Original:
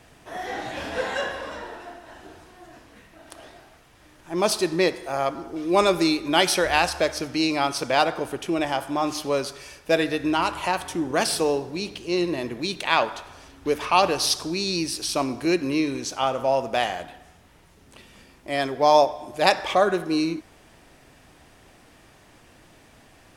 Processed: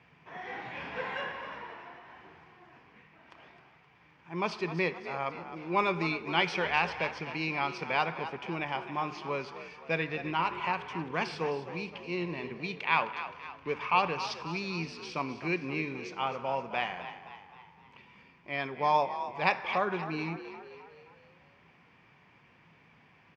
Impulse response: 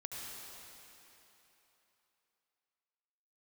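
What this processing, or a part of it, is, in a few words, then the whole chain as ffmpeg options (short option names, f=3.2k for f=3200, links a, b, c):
frequency-shifting delay pedal into a guitar cabinet: -filter_complex "[0:a]asplit=6[a][b][c][d][e][f];[b]adelay=261,afreqshift=50,volume=-12dB[g];[c]adelay=522,afreqshift=100,volume=-18dB[h];[d]adelay=783,afreqshift=150,volume=-24dB[i];[e]adelay=1044,afreqshift=200,volume=-30.1dB[j];[f]adelay=1305,afreqshift=250,volume=-36.1dB[k];[a][g][h][i][j][k]amix=inputs=6:normalize=0,highpass=99,equalizer=f=160:t=q:w=4:g=9,equalizer=f=310:t=q:w=4:g=-6,equalizer=f=630:t=q:w=4:g=-7,equalizer=f=1k:t=q:w=4:g=6,equalizer=f=2.3k:t=q:w=4:g=9,equalizer=f=3.9k:t=q:w=4:g=-8,lowpass=f=4.3k:w=0.5412,lowpass=f=4.3k:w=1.3066,volume=-9dB"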